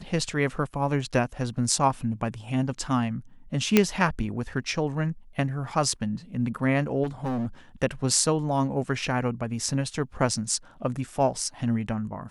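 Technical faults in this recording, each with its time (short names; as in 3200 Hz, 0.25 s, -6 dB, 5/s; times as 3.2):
3.77 pop -3 dBFS
7.03–7.47 clipped -25 dBFS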